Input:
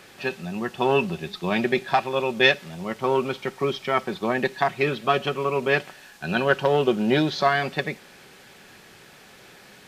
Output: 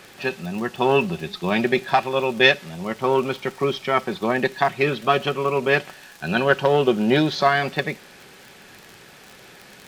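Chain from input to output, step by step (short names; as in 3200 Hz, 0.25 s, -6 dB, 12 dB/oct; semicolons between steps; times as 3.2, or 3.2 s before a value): crackle 38/s -32 dBFS; gain +2.5 dB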